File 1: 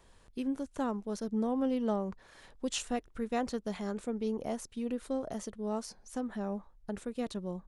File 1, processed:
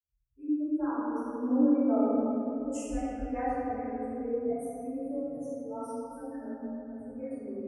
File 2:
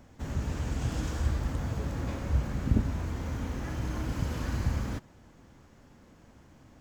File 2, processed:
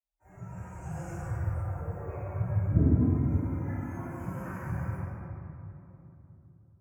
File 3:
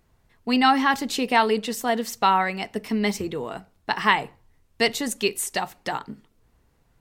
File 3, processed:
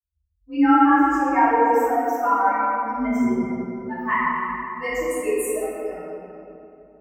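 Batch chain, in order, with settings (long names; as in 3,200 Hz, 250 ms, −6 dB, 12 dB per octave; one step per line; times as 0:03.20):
spectral dynamics exaggerated over time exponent 3
Butterworth band-reject 3,800 Hz, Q 0.7
rectangular room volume 140 cubic metres, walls hard, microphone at 2.6 metres
frequency shifter +31 Hz
level −8 dB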